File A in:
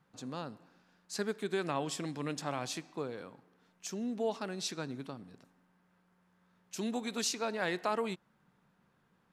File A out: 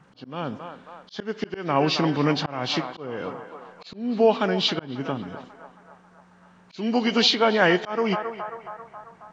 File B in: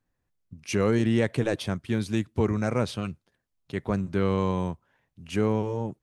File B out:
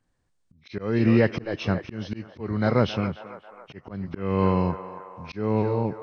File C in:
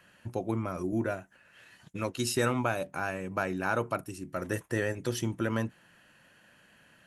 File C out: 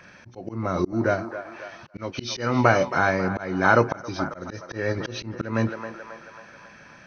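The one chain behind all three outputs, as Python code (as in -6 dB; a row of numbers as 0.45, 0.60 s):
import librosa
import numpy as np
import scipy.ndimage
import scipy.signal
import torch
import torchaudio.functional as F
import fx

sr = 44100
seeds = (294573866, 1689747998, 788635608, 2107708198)

y = fx.freq_compress(x, sr, knee_hz=1800.0, ratio=1.5)
y = fx.echo_banded(y, sr, ms=271, feedback_pct=65, hz=980.0, wet_db=-11)
y = fx.auto_swell(y, sr, attack_ms=301.0)
y = y * 10.0 ** (-26 / 20.0) / np.sqrt(np.mean(np.square(y)))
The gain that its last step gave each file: +16.0, +5.0, +12.0 dB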